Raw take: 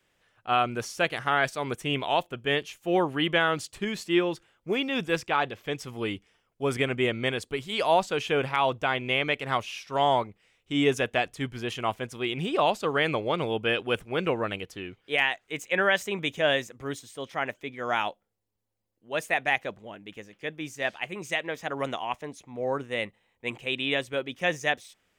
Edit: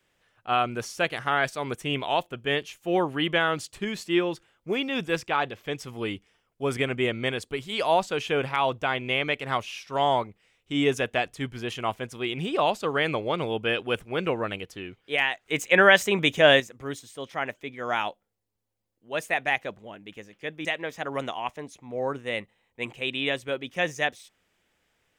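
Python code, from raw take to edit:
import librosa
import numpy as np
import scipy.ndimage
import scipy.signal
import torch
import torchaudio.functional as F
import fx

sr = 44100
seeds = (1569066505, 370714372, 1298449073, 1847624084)

y = fx.edit(x, sr, fx.clip_gain(start_s=15.46, length_s=1.14, db=7.0),
    fx.cut(start_s=20.65, length_s=0.65), tone=tone)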